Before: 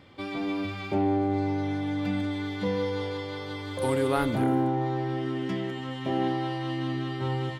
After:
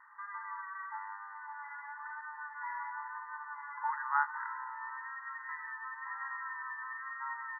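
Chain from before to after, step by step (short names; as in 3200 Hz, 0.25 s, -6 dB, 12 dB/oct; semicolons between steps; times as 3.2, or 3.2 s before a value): vibrato 1 Hz 37 cents; brick-wall FIR band-pass 840–2000 Hz; dynamic EQ 1300 Hz, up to -4 dB, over -53 dBFS, Q 1; gain +5 dB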